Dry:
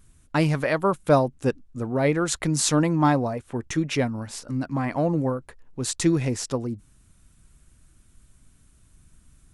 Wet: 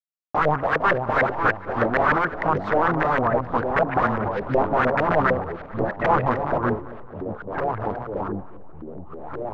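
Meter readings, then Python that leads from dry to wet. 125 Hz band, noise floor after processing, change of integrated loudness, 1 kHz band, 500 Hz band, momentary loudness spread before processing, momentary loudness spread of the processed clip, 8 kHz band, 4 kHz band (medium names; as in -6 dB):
-3.0 dB, -39 dBFS, +2.0 dB, +9.0 dB, +3.5 dB, 11 LU, 13 LU, under -25 dB, -8.5 dB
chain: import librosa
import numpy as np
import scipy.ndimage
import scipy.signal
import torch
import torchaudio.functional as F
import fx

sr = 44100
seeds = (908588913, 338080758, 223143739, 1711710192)

y = fx.delta_hold(x, sr, step_db=-35.0)
y = fx.high_shelf(y, sr, hz=5100.0, db=3.5)
y = fx.rider(y, sr, range_db=4, speed_s=0.5)
y = fx.filter_lfo_lowpass(y, sr, shape='saw_up', hz=1.1, low_hz=730.0, high_hz=4500.0, q=1.6)
y = (np.mod(10.0 ** (18.5 / 20.0) * y + 1.0, 2.0) - 1.0) / 10.0 ** (18.5 / 20.0)
y = fx.filter_lfo_lowpass(y, sr, shape='saw_up', hz=6.6, low_hz=520.0, high_hz=1900.0, q=4.8)
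y = fx.echo_pitch(y, sr, ms=392, semitones=-3, count=3, db_per_echo=-6.0)
y = fx.echo_feedback(y, sr, ms=220, feedback_pct=51, wet_db=-18.5)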